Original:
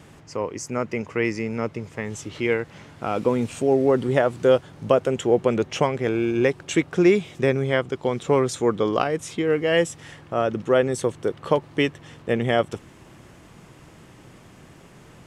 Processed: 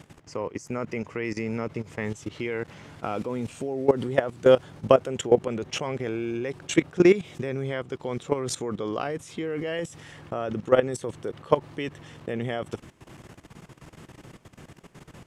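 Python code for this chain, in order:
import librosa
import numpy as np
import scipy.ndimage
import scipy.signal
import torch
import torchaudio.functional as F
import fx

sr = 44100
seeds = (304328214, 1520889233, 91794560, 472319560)

y = fx.level_steps(x, sr, step_db=16)
y = F.gain(torch.from_numpy(y), 2.5).numpy()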